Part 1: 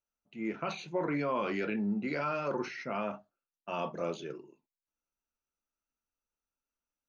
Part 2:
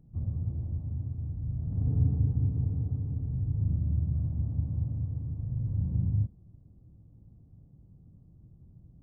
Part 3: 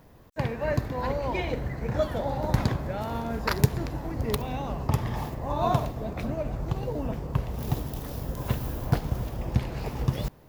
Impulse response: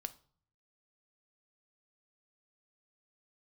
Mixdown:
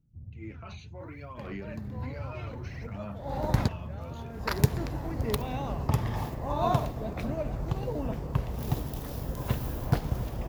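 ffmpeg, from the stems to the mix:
-filter_complex "[0:a]asubboost=boost=7.5:cutoff=150,alimiter=level_in=1.58:limit=0.0631:level=0:latency=1:release=17,volume=0.631,aphaser=in_gain=1:out_gain=1:delay=4.8:decay=0.57:speed=0.65:type=sinusoidal,volume=0.355,asplit=2[s0][s1];[1:a]equalizer=f=1300:t=o:w=2:g=-12,volume=0.251[s2];[2:a]adelay=1000,volume=0.841[s3];[s1]apad=whole_len=506591[s4];[s3][s4]sidechaincompress=threshold=0.00112:ratio=4:attack=9.2:release=148[s5];[s0][s2][s5]amix=inputs=3:normalize=0"

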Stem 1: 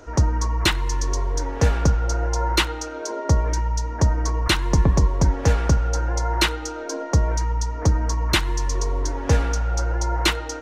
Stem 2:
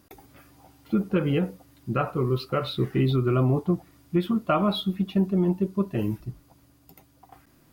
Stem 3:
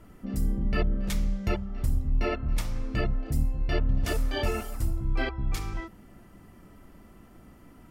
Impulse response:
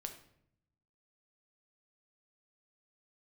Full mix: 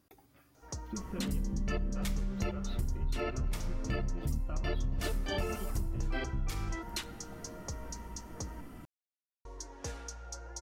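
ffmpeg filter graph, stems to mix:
-filter_complex "[0:a]bass=f=250:g=-5,treble=f=4000:g=10,adelay=550,volume=0.1,asplit=3[s0][s1][s2];[s0]atrim=end=8.61,asetpts=PTS-STARTPTS,afade=t=out:st=8.606:d=0.004:c=hsin[s3];[s1]atrim=start=8.61:end=9.45,asetpts=PTS-STARTPTS,volume=0[s4];[s2]atrim=start=9.45,asetpts=PTS-STARTPTS,afade=t=in:d=0.004:c=hsin[s5];[s3][s4][s5]concat=n=3:v=0:a=1[s6];[1:a]acompressor=threshold=0.0562:ratio=6,volume=0.266[s7];[2:a]adelay=950,volume=1.06,asplit=2[s8][s9];[s9]volume=0.562[s10];[3:a]atrim=start_sample=2205[s11];[s10][s11]afir=irnorm=-1:irlink=0[s12];[s6][s7][s8][s12]amix=inputs=4:normalize=0,acompressor=threshold=0.0224:ratio=3"

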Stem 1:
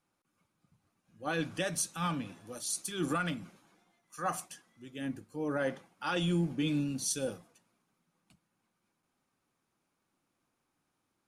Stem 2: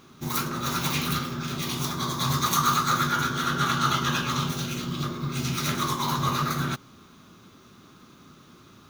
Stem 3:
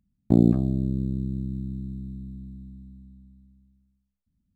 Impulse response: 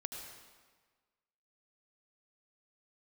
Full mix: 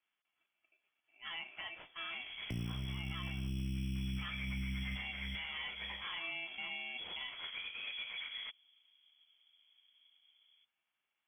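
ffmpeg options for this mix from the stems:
-filter_complex "[0:a]aeval=exprs='val(0)*sgn(sin(2*PI*1000*n/s))':c=same,volume=0.501,asplit=2[s0][s1];[1:a]adynamicsmooth=sensitivity=7:basefreq=580,adelay=1750,volume=0.15[s2];[2:a]lowshelf=f=170:g=8,acrossover=split=150[s3][s4];[s4]acompressor=threshold=0.0398:ratio=6[s5];[s3][s5]amix=inputs=2:normalize=0,acrusher=samples=16:mix=1:aa=0.000001,adelay=2200,volume=1[s6];[s1]apad=whole_len=297985[s7];[s6][s7]sidechaincompress=threshold=0.00158:ratio=8:attack=38:release=124[s8];[s0][s2]amix=inputs=2:normalize=0,lowpass=f=3000:t=q:w=0.5098,lowpass=f=3000:t=q:w=0.6013,lowpass=f=3000:t=q:w=0.9,lowpass=f=3000:t=q:w=2.563,afreqshift=-3500,alimiter=level_in=2.82:limit=0.0631:level=0:latency=1:release=203,volume=0.355,volume=1[s9];[s8][s9]amix=inputs=2:normalize=0,alimiter=level_in=2.37:limit=0.0631:level=0:latency=1:release=33,volume=0.422"

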